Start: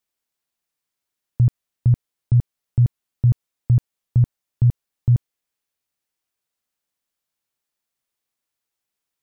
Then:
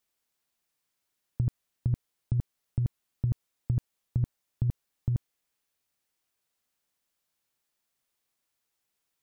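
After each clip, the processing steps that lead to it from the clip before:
compressor whose output falls as the input rises −18 dBFS, ratio −0.5
level −5 dB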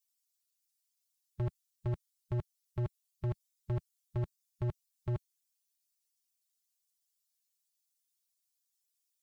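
spectral dynamics exaggerated over time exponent 2
gain into a clipping stage and back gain 36 dB
level +5.5 dB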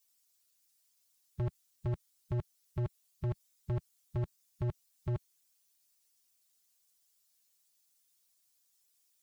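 brickwall limiter −39.5 dBFS, peak gain reduction 9 dB
level +9 dB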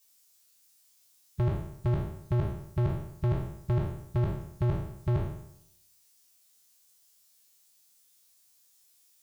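peak hold with a decay on every bin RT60 0.76 s
level +6.5 dB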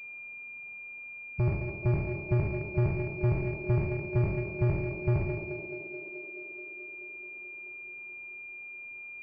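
feedback echo with a band-pass in the loop 215 ms, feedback 81%, band-pass 420 Hz, level −4.5 dB
switching amplifier with a slow clock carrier 2,400 Hz

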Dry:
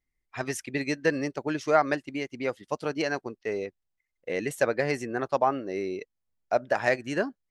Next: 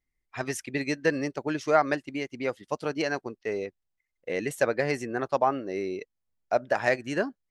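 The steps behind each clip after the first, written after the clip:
no processing that can be heard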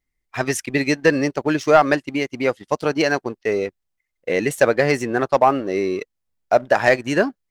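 leveller curve on the samples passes 1
level +6 dB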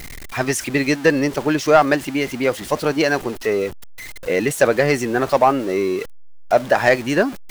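converter with a step at zero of −27 dBFS

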